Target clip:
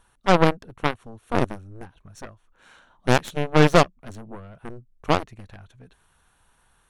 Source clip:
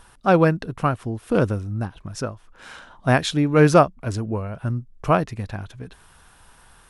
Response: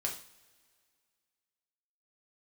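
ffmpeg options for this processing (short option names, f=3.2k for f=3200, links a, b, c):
-af "asuperstop=centerf=5000:order=4:qfactor=7,aeval=exprs='0.75*(cos(1*acos(clip(val(0)/0.75,-1,1)))-cos(1*PI/2))+0.188*(cos(4*acos(clip(val(0)/0.75,-1,1)))-cos(4*PI/2))+0.0266*(cos(5*acos(clip(val(0)/0.75,-1,1)))-cos(5*PI/2))+0.168*(cos(7*acos(clip(val(0)/0.75,-1,1)))-cos(7*PI/2))':c=same,volume=-3dB"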